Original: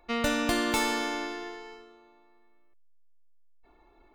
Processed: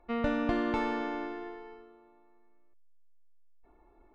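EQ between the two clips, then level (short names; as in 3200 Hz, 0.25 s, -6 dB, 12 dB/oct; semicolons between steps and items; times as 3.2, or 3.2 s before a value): tape spacing loss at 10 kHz 27 dB; high shelf 3700 Hz -11.5 dB; 0.0 dB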